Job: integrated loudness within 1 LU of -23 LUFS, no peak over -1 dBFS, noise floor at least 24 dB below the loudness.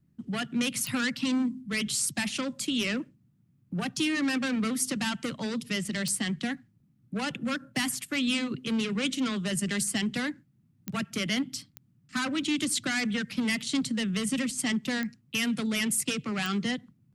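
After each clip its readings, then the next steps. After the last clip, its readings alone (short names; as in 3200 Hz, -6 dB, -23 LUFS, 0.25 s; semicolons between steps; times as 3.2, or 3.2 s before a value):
clicks 6; loudness -29.5 LUFS; peak -14.0 dBFS; loudness target -23.0 LUFS
-> de-click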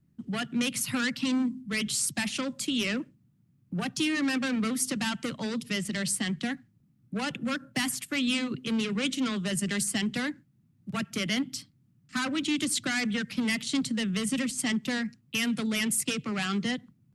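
clicks 0; loudness -29.5 LUFS; peak -14.0 dBFS; loudness target -23.0 LUFS
-> gain +6.5 dB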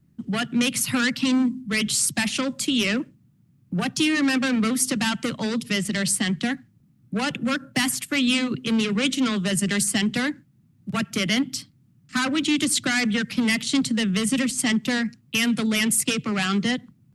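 loudness -23.0 LUFS; peak -7.5 dBFS; noise floor -60 dBFS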